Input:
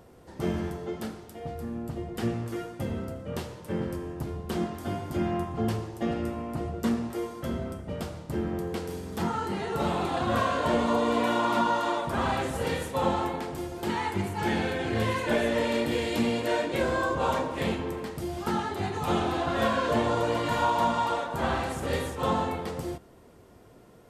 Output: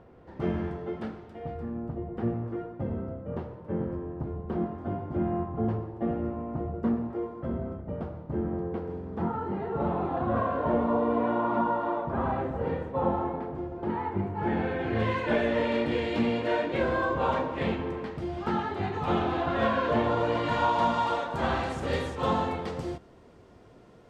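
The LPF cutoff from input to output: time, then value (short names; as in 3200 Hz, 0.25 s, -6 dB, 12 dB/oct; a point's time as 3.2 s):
1.52 s 2300 Hz
1.97 s 1100 Hz
14.32 s 1100 Hz
15.12 s 3000 Hz
20.08 s 3000 Hz
21 s 5500 Hz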